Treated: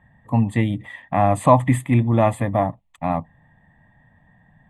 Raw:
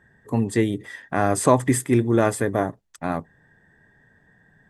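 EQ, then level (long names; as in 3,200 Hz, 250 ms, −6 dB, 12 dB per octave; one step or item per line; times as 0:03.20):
low-pass filter 2,100 Hz 6 dB per octave
phaser with its sweep stopped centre 1,500 Hz, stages 6
+7.0 dB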